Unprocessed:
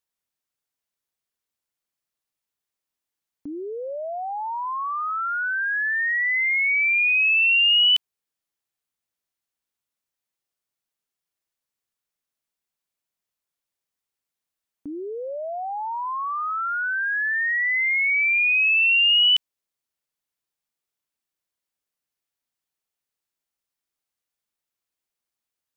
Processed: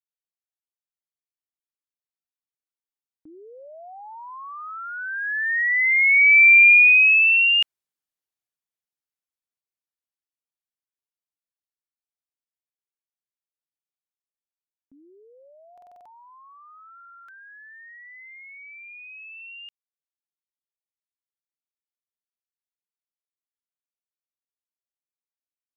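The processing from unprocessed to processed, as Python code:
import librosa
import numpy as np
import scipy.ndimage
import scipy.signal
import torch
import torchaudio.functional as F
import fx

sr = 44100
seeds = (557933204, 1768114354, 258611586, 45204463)

y = fx.doppler_pass(x, sr, speed_mps=20, closest_m=7.2, pass_at_s=6.53)
y = fx.dynamic_eq(y, sr, hz=1600.0, q=1.2, threshold_db=-38.0, ratio=4.0, max_db=5)
y = fx.buffer_glitch(y, sr, at_s=(15.73, 16.96), block=2048, repeats=6)
y = F.gain(torch.from_numpy(y), 6.5).numpy()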